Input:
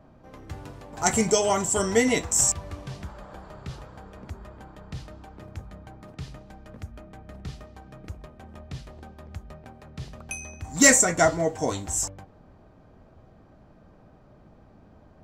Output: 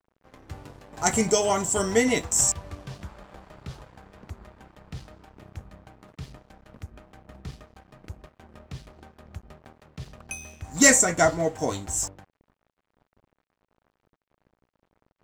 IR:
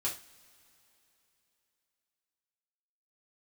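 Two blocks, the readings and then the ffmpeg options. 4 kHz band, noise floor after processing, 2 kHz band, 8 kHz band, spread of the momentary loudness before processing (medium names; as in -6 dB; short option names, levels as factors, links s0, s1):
0.0 dB, -84 dBFS, 0.0 dB, -0.5 dB, 23 LU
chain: -af "aeval=exprs='sgn(val(0))*max(abs(val(0))-0.00422,0)':c=same"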